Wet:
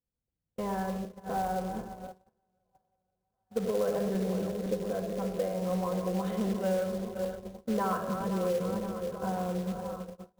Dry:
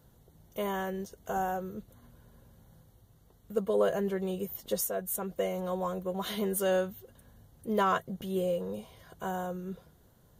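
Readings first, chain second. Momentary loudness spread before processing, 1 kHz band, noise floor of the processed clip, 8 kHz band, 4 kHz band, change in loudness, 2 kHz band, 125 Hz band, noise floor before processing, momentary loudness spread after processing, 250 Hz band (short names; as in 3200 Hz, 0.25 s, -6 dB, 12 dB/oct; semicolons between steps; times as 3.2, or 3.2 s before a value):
15 LU, -0.5 dB, -85 dBFS, -7.0 dB, -4.0 dB, 0.0 dB, -4.0 dB, +4.5 dB, -62 dBFS, 8 LU, +3.5 dB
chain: regenerating reverse delay 0.259 s, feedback 75%, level -10 dB; tape spacing loss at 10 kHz 43 dB; on a send: delay with a stepping band-pass 0.68 s, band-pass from 360 Hz, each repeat 0.7 oct, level -11.5 dB; on the sum: shoebox room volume 3000 m³, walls furnished, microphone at 2 m; gate -39 dBFS, range -34 dB; in parallel at -11 dB: soft clip -29.5 dBFS, distortion -10 dB; on the sum: high shelf 4100 Hz -9.5 dB; short-mantissa float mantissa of 2-bit; compressor 3:1, threshold -26 dBFS, peak gain reduction 4 dB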